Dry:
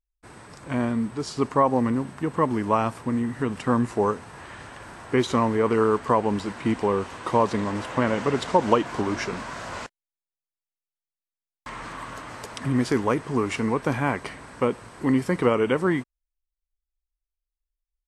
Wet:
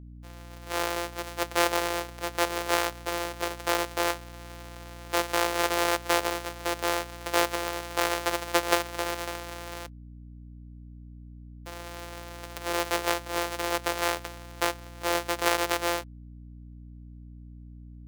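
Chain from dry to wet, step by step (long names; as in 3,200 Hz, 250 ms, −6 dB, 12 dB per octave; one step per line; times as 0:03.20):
samples sorted by size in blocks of 256 samples
high-pass filter 400 Hz 24 dB per octave
mains hum 60 Hz, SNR 14 dB
level −1 dB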